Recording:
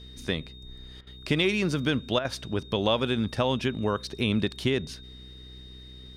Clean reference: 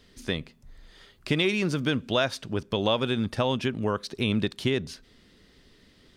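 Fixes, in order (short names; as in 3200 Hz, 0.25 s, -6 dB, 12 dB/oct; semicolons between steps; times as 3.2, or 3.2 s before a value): de-hum 63.1 Hz, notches 7; notch 3700 Hz, Q 30; interpolate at 1.01/2.19, 57 ms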